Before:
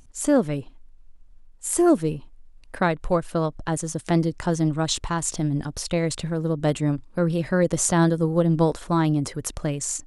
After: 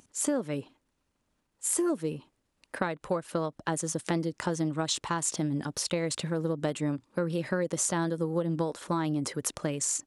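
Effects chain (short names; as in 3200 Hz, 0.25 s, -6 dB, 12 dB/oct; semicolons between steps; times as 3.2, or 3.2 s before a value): Bessel high-pass 210 Hz, order 2; notch 700 Hz, Q 12; compressor 10:1, threshold -25 dBFS, peak gain reduction 11.5 dB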